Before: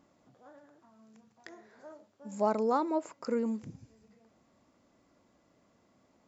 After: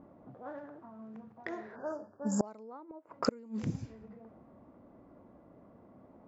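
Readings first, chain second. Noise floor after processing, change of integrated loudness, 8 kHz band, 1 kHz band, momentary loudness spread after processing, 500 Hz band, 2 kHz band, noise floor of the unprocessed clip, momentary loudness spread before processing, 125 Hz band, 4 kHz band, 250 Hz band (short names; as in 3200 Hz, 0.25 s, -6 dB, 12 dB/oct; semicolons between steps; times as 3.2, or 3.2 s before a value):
-59 dBFS, -7.5 dB, n/a, -8.5 dB, 23 LU, -6.0 dB, +2.0 dB, -70 dBFS, 19 LU, +8.0 dB, +7.0 dB, -1.5 dB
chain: flipped gate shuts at -26 dBFS, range -31 dB; low-pass opened by the level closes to 740 Hz, open at -41.5 dBFS; spectral delete 1.76–2.45, 1800–4600 Hz; gain +11.5 dB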